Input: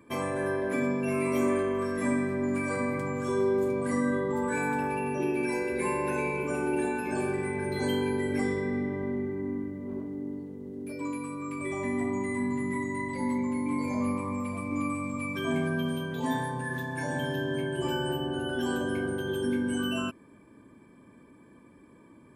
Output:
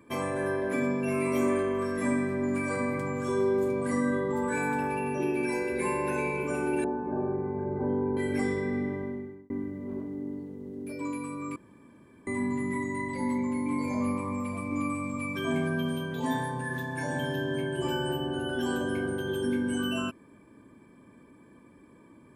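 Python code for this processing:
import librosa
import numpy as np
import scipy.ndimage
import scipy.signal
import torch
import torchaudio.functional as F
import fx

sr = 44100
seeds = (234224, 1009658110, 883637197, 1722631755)

y = fx.lowpass(x, sr, hz=1100.0, slope=24, at=(6.84, 8.17))
y = fx.edit(y, sr, fx.fade_out_span(start_s=8.9, length_s=0.6),
    fx.room_tone_fill(start_s=11.56, length_s=0.71), tone=tone)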